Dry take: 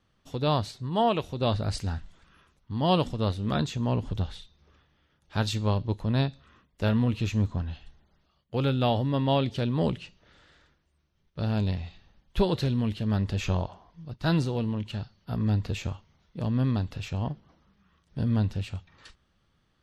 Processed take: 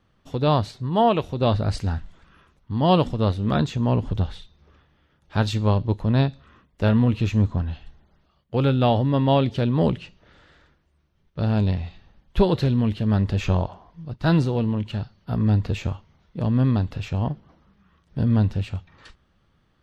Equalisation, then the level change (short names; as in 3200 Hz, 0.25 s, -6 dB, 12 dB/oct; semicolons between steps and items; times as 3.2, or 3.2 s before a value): high shelf 3400 Hz -8.5 dB; +6.0 dB